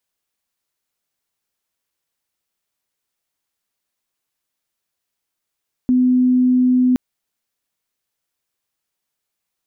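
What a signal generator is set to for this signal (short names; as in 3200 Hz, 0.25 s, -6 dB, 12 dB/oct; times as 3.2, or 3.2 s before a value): tone sine 252 Hz -11 dBFS 1.07 s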